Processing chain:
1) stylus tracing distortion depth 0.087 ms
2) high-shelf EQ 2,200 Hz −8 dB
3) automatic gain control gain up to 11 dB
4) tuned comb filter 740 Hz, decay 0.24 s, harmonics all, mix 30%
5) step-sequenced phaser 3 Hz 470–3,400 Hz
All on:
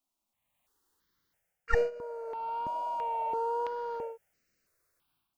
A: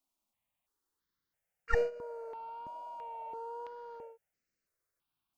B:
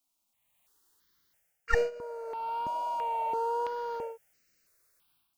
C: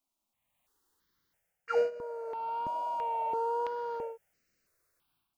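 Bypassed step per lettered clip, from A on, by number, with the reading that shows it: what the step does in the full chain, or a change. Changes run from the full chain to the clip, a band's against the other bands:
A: 3, change in momentary loudness spread +7 LU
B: 2, 4 kHz band +5.0 dB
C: 1, change in crest factor −7.0 dB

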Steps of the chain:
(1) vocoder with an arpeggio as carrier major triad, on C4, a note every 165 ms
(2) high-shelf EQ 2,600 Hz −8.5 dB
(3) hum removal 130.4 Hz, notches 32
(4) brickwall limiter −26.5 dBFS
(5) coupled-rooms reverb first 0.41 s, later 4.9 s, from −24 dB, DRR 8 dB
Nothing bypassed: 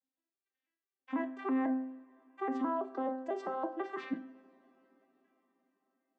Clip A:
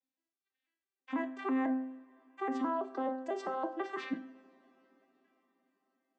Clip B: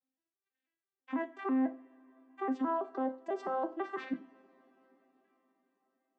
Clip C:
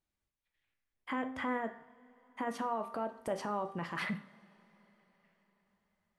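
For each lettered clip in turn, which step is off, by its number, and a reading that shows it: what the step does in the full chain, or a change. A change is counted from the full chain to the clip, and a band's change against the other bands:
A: 2, 4 kHz band +5.0 dB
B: 3, change in momentary loudness spread −1 LU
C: 1, 4 kHz band +10.0 dB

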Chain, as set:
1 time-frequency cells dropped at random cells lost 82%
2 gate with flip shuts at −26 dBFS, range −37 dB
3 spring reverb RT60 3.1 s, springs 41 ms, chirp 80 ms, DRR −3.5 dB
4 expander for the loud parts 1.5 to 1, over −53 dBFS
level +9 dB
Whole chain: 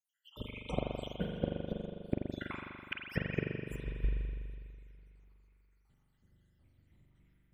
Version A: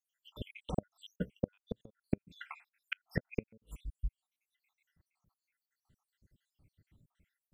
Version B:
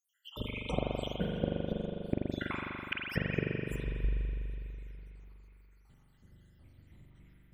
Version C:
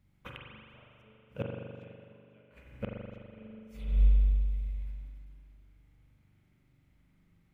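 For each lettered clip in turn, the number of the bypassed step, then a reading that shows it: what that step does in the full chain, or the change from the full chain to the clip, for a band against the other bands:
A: 3, change in crest factor +5.5 dB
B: 4, change in momentary loudness spread +3 LU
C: 1, 125 Hz band +11.5 dB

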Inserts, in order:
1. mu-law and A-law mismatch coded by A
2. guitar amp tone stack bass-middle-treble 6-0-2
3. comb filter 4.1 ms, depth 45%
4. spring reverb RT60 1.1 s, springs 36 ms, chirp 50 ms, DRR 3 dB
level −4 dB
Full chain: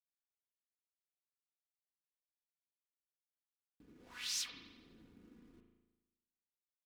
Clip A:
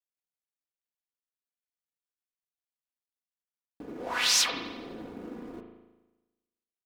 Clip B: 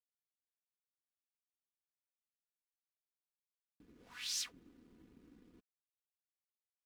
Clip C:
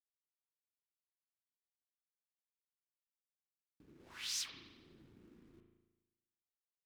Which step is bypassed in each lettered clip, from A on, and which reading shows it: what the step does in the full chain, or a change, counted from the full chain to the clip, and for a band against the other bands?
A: 2, 500 Hz band +9.5 dB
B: 4, change in momentary loudness spread −7 LU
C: 3, 125 Hz band +3.0 dB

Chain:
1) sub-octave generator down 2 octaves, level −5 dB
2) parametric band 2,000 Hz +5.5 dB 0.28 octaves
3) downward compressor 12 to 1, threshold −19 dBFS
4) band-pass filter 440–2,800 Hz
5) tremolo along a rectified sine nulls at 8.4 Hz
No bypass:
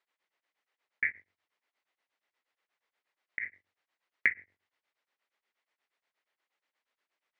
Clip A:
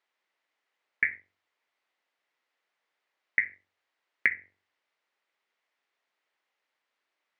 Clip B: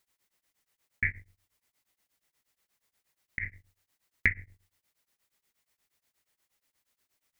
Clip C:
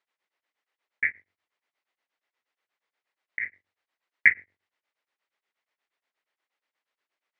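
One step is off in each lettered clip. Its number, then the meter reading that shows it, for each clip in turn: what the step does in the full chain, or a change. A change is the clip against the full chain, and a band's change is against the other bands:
5, change in momentary loudness spread −1 LU
4, 250 Hz band +10.0 dB
3, average gain reduction 4.0 dB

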